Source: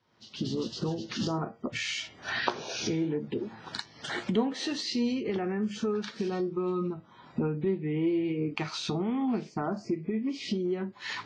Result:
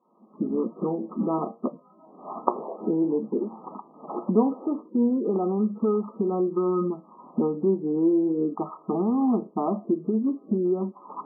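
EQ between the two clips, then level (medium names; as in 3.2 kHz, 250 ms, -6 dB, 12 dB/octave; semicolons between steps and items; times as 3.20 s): brick-wall FIR band-pass 170–1300 Hz; +6.5 dB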